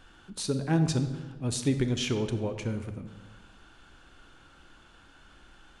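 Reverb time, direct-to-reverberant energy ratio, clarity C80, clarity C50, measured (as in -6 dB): 1.4 s, 8.0 dB, 10.5 dB, 9.5 dB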